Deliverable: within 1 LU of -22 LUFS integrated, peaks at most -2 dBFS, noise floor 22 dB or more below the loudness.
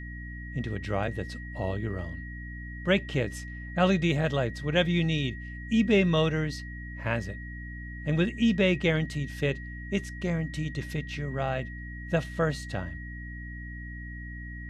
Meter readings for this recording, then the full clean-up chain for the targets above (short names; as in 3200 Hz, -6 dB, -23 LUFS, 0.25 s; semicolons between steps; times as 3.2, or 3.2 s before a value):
hum 60 Hz; harmonics up to 300 Hz; hum level -38 dBFS; steady tone 1900 Hz; tone level -43 dBFS; loudness -29.0 LUFS; peak -11.0 dBFS; loudness target -22.0 LUFS
-> de-hum 60 Hz, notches 5; notch 1900 Hz, Q 30; gain +7 dB